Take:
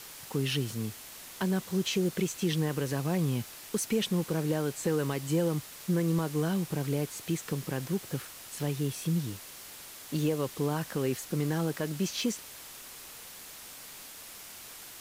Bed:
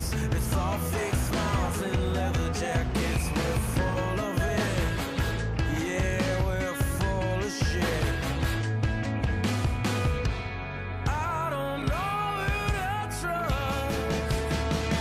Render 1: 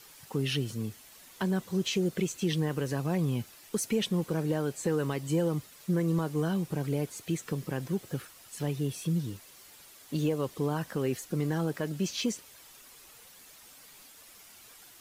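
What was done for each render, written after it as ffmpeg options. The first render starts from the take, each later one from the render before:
-af "afftdn=nr=9:nf=-47"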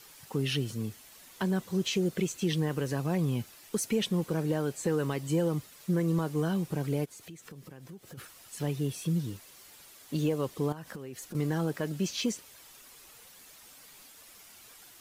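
-filter_complex "[0:a]asplit=3[a][b][c];[a]afade=t=out:st=7.04:d=0.02[d];[b]acompressor=threshold=-46dB:ratio=4:attack=3.2:release=140:knee=1:detection=peak,afade=t=in:st=7.04:d=0.02,afade=t=out:st=8.17:d=0.02[e];[c]afade=t=in:st=8.17:d=0.02[f];[d][e][f]amix=inputs=3:normalize=0,asettb=1/sr,asplit=3[g][h][i];[g]atrim=end=10.724[j];[h]atrim=start=10.72:end=11.35,asetpts=PTS-STARTPTS,afade=t=in:d=0.004:c=qsin,afade=t=out:st=0.626:d=0.004:c=qsin,acompressor=threshold=-37dB:ratio=16:attack=3.2:release=140:knee=1:detection=peak[k];[i]atrim=start=11.346[l];[j][k]acrossfade=d=0.004:c1=hsin:c2=qsin[m];[m][l]acrossfade=d=0.004:c1=qsin:c2=hsin"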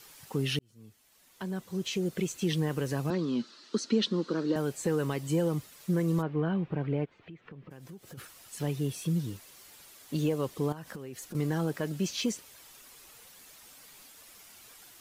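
-filter_complex "[0:a]asettb=1/sr,asplit=3[a][b][c];[a]atrim=end=3.104[d];[b]atrim=start=3.1:end=4.56,asetpts=PTS-STARTPTS,afade=t=in:d=0.004:c=qsin,afade=t=out:st=1.456:d=0.004:c=qsin,highpass=f=200:w=0.5412,highpass=f=200:w=1.3066,equalizer=f=240:t=q:w=4:g=7,equalizer=f=340:t=q:w=4:g=4,equalizer=f=750:t=q:w=4:g=-9,equalizer=f=1.3k:t=q:w=4:g=6,equalizer=f=2.3k:t=q:w=4:g=-7,equalizer=f=4.2k:t=q:w=4:g=10,lowpass=f=5.9k:w=0.5412,lowpass=f=5.9k:w=1.3066[e];[c]atrim=start=4.556[f];[d][e]acrossfade=d=0.004:c1=hsin:c2=qsin[g];[g][f]acrossfade=d=0.004:c1=qsin:c2=hsin,asplit=3[h][i][j];[h]afade=t=out:st=6.21:d=0.02[k];[i]lowpass=f=2.8k:w=0.5412,lowpass=f=2.8k:w=1.3066,afade=t=in:st=6.21:d=0.02,afade=t=out:st=7.7:d=0.02[l];[j]afade=t=in:st=7.7:d=0.02[m];[k][l][m]amix=inputs=3:normalize=0,asplit=2[n][o];[n]atrim=end=0.59,asetpts=PTS-STARTPTS,afade=t=out:st=0.586:d=0.004:c=hsin[p];[o]atrim=start=0.59,asetpts=PTS-STARTPTS,afade=t=in:d=1.89[q];[p][q]concat=n=2:v=0:a=1"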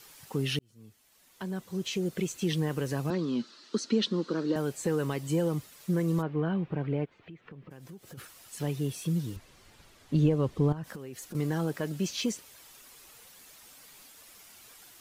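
-filter_complex "[0:a]asettb=1/sr,asplit=3[a][b][c];[a]atrim=end=9.364[d];[b]atrim=start=9.36:end=10.84,asetpts=PTS-STARTPTS,afade=t=in:d=0.004:c=qsin,afade=t=out:st=1.476:d=0.004:c=qsin,aemphasis=mode=reproduction:type=bsi[e];[c]atrim=start=10.836[f];[d][e]acrossfade=d=0.004:c1=hsin:c2=qsin[g];[g][f]acrossfade=d=0.004:c1=qsin:c2=hsin"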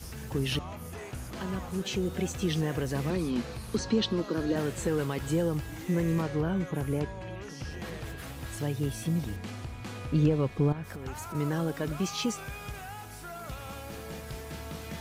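-filter_complex "[1:a]volume=-12.5dB[a];[0:a][a]amix=inputs=2:normalize=0"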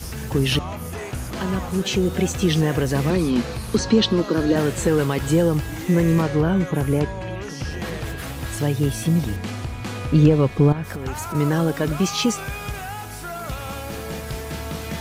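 -af "volume=10dB"

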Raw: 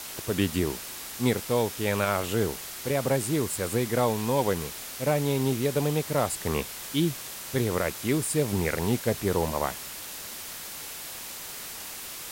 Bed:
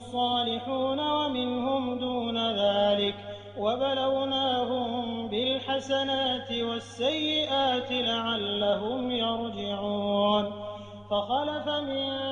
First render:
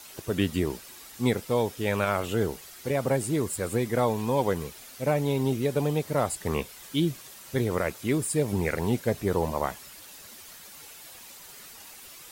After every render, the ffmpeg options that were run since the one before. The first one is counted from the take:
-af "afftdn=nr=10:nf=-39"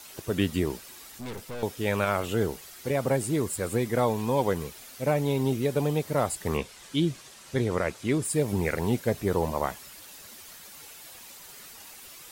-filter_complex "[0:a]asettb=1/sr,asplit=3[a][b][c];[a]atrim=end=1.184[d];[b]atrim=start=1.18:end=1.63,asetpts=PTS-STARTPTS,afade=t=in:d=0.004:c=qsin,afade=t=out:st=0.446:d=0.004:c=qsin,aeval=exprs='(tanh(56.2*val(0)+0.45)-tanh(0.45))/56.2':c=same[e];[c]atrim=start=1.626[f];[d][e]acrossfade=d=0.004:c1=hsin:c2=qsin[g];[g][f]acrossfade=d=0.004:c1=qsin:c2=hsin,asettb=1/sr,asplit=3[h][i][j];[h]atrim=end=6.574[k];[i]atrim=start=6.57:end=8.25,asetpts=PTS-STARTPTS,afade=t=in:d=0.004:c=qsin,afade=t=out:st=1.676:d=0.004:c=qsin,lowpass=8.9k[l];[j]atrim=start=8.246[m];[k][l]acrossfade=d=0.004:c1=hsin:c2=qsin[n];[n][m]acrossfade=d=0.004:c1=qsin:c2=hsin"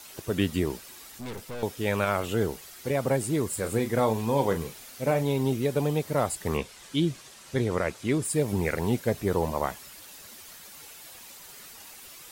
-filter_complex "[0:a]asettb=1/sr,asplit=3[a][b][c];[a]atrim=end=3.484[d];[b]atrim=start=3.48:end=5.23,asetpts=PTS-STARTPTS,afade=t=in:d=0.004:c=qsin,afade=t=out:st=1.746:d=0.004:c=qsin,asplit=2[e][f];[f]adelay=36,volume=-9.5dB[g];[e][g]amix=inputs=2:normalize=0,atrim=end_sample=77175[h];[c]atrim=start=5.226[i];[d][h]acrossfade=d=0.004:c1=hsin:c2=qsin[j];[j][i]acrossfade=d=0.004:c1=qsin:c2=hsin"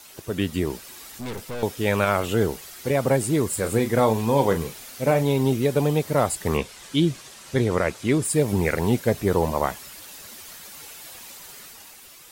-af "dynaudnorm=f=110:g=13:m=5dB"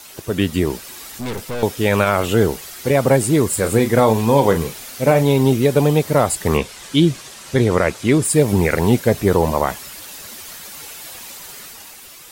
-af "volume=6.5dB,alimiter=limit=-3dB:level=0:latency=1"

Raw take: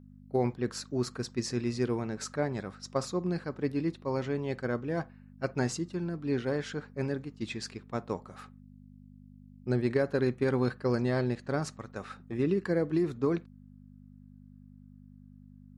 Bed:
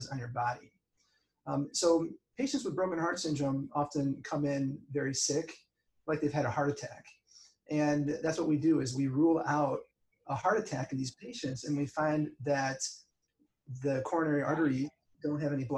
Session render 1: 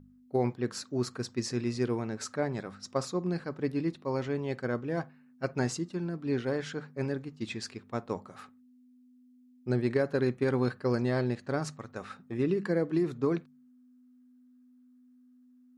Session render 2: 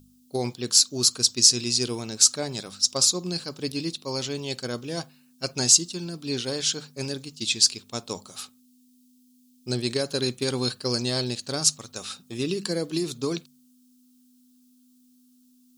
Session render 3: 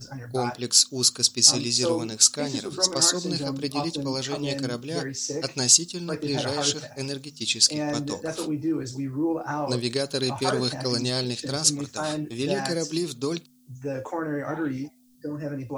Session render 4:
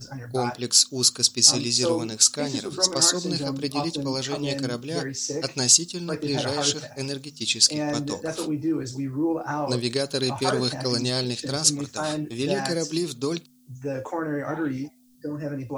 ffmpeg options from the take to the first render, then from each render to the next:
-af "bandreject=f=50:t=h:w=4,bandreject=f=100:t=h:w=4,bandreject=f=150:t=h:w=4,bandreject=f=200:t=h:w=4"
-af "aexciter=amount=10.1:drive=6.8:freq=2.9k"
-filter_complex "[1:a]volume=1dB[a];[0:a][a]amix=inputs=2:normalize=0"
-af "volume=1dB,alimiter=limit=-3dB:level=0:latency=1"

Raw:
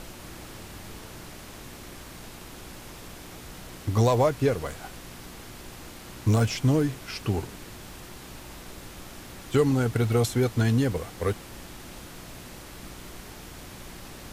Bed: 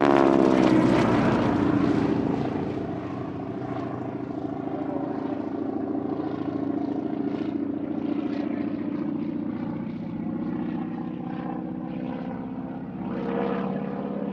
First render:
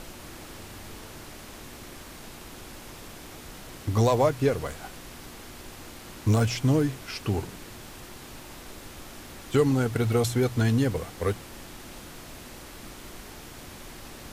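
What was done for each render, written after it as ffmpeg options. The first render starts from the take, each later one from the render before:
-af "bandreject=f=60:t=h:w=4,bandreject=f=120:t=h:w=4,bandreject=f=180:t=h:w=4"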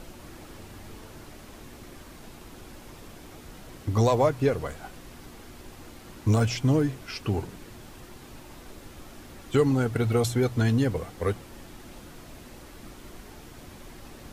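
-af "afftdn=nr=6:nf=-44"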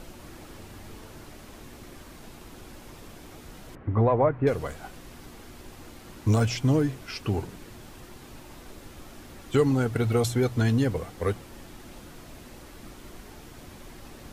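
-filter_complex "[0:a]asettb=1/sr,asplit=3[a][b][c];[a]atrim=end=3.754[d];[b]atrim=start=3.75:end=4.47,asetpts=PTS-STARTPTS,afade=t=in:d=0.004:c=qsin,afade=t=out:st=0.716:d=0.004:c=qsin,lowpass=f=2k:w=0.5412,lowpass=f=2k:w=1.3066[e];[c]atrim=start=4.466[f];[d][e]acrossfade=d=0.004:c1=hsin:c2=qsin[g];[g][f]acrossfade=d=0.004:c1=qsin:c2=hsin"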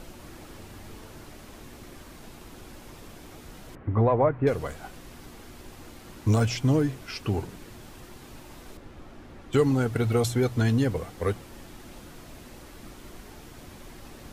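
-filter_complex "[0:a]asettb=1/sr,asplit=3[a][b][c];[a]atrim=end=8.774[d];[b]atrim=start=8.77:end=9.53,asetpts=PTS-STARTPTS,afade=t=in:d=0.004:c=qsin,afade=t=out:st=0.756:d=0.004:c=qsin,lowpass=f=1.9k:p=1[e];[c]atrim=start=9.526[f];[d][e]acrossfade=d=0.004:c1=hsin:c2=qsin[g];[g][f]acrossfade=d=0.004:c1=qsin:c2=hsin"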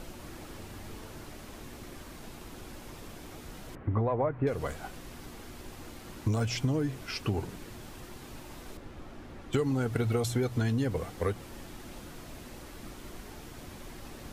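-af "acompressor=threshold=-25dB:ratio=6"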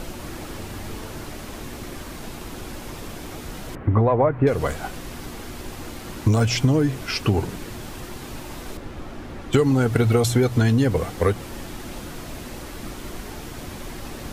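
-af "volume=10.5dB"

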